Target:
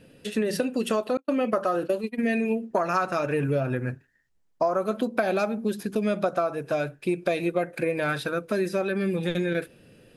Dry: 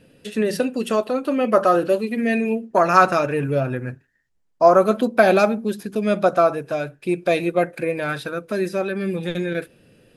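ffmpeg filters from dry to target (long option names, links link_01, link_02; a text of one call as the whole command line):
ffmpeg -i in.wav -filter_complex "[0:a]asettb=1/sr,asplit=3[link_01][link_02][link_03];[link_01]atrim=end=1.174[link_04];[link_02]atrim=start=1.17:end=2.57,asetpts=PTS-STARTPTS,afade=type=in:duration=0.004:curve=qsin,afade=type=out:start_time=1.396:duration=0.004:curve=qsin,agate=range=-48dB:threshold=-22dB:ratio=16:detection=peak[link_05];[link_03]atrim=start=2.566[link_06];[link_04][link_05]acrossfade=duration=0.004:curve1=hsin:curve2=qsin[link_07];[link_07][link_06]acrossfade=duration=0.004:curve1=qsin:curve2=hsin,acompressor=threshold=-21dB:ratio=10" out.wav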